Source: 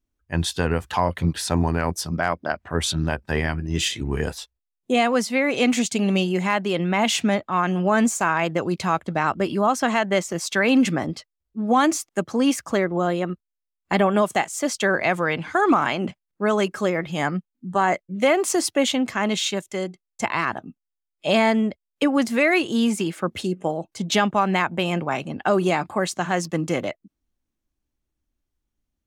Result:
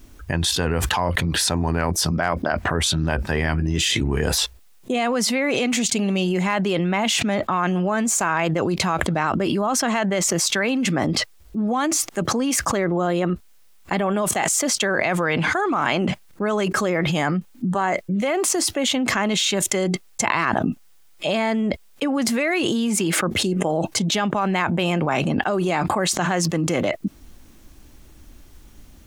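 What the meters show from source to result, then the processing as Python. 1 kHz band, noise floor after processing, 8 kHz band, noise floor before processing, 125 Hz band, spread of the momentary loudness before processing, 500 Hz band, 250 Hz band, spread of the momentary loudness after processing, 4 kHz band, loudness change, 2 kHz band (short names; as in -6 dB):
-0.5 dB, -50 dBFS, +7.0 dB, -83 dBFS, +3.0 dB, 8 LU, -0.5 dB, +0.5 dB, 5 LU, +4.0 dB, +1.0 dB, +1.0 dB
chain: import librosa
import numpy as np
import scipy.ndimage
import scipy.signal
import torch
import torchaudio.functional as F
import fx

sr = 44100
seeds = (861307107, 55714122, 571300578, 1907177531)

y = fx.env_flatten(x, sr, amount_pct=100)
y = F.gain(torch.from_numpy(y), -7.0).numpy()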